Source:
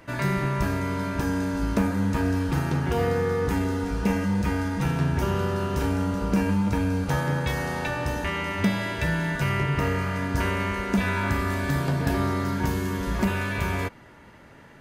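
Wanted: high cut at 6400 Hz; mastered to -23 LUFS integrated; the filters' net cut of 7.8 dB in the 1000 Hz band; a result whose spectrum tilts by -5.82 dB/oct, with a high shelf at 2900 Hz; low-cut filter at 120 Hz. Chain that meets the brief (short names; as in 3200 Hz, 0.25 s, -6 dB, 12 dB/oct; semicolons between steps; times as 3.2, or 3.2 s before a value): HPF 120 Hz; LPF 6400 Hz; bell 1000 Hz -9 dB; high shelf 2900 Hz -6.5 dB; gain +5.5 dB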